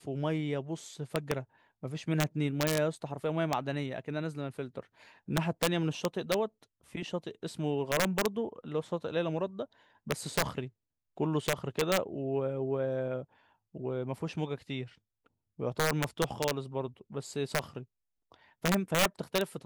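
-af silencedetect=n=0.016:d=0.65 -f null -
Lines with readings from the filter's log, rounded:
silence_start: 14.84
silence_end: 15.60 | silence_duration: 0.76
silence_start: 17.81
silence_end: 18.64 | silence_duration: 0.83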